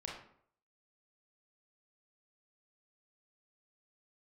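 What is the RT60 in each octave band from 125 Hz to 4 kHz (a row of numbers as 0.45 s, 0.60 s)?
0.60 s, 0.55 s, 0.65 s, 0.60 s, 0.50 s, 0.40 s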